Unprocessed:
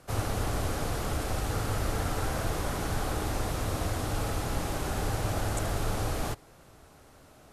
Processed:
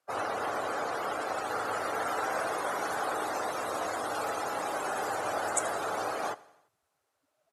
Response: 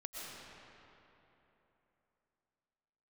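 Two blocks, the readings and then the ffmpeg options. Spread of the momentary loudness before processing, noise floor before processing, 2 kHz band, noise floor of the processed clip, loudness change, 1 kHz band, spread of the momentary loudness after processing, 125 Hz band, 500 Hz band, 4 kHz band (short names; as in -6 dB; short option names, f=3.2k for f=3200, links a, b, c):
2 LU, -56 dBFS, +3.5 dB, -80 dBFS, -0.5 dB, +5.0 dB, 3 LU, -22.5 dB, +2.0 dB, -3.5 dB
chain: -filter_complex "[0:a]afftdn=nr=27:nf=-41,highpass=590,acrossover=split=770|6200[a][b][c];[c]dynaudnorm=f=340:g=11:m=8dB[d];[a][b][d]amix=inputs=3:normalize=0,aecho=1:1:85|170|255|340:0.0841|0.0488|0.0283|0.0164,volume=6dB"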